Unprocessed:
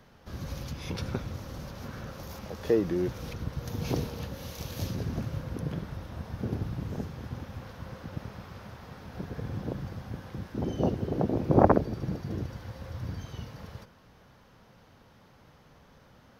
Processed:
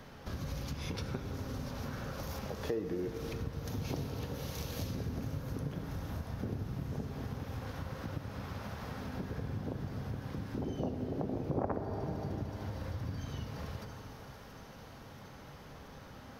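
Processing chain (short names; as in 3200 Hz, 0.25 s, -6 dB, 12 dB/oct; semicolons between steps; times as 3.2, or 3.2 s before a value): thin delay 0.681 s, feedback 71%, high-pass 5600 Hz, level -11 dB; on a send at -7.5 dB: reverb RT60 2.7 s, pre-delay 4 ms; on the sum: compressor 3:1, threshold -44 dBFS, peak gain reduction 22 dB; gain +5.5 dB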